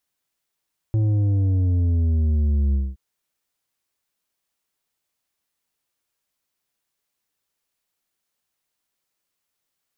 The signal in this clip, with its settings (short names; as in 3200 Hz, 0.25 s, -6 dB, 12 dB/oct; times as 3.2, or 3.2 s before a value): sub drop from 110 Hz, over 2.02 s, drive 7.5 dB, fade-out 0.22 s, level -17.5 dB